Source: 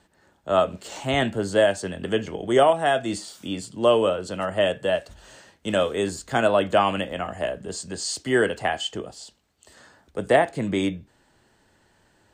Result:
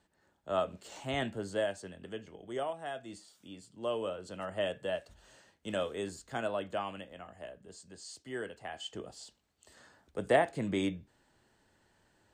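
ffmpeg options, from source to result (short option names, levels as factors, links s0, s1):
-af "volume=2.11,afade=t=out:st=1.23:d=0.98:silence=0.421697,afade=t=in:st=3.63:d=0.91:silence=0.446684,afade=t=out:st=5.85:d=1.23:silence=0.446684,afade=t=in:st=8.67:d=0.49:silence=0.281838"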